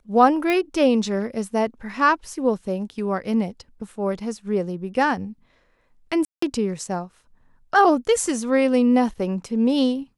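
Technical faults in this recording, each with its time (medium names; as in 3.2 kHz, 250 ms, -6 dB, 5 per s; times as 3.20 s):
0.50 s: pop -11 dBFS
6.25–6.42 s: dropout 174 ms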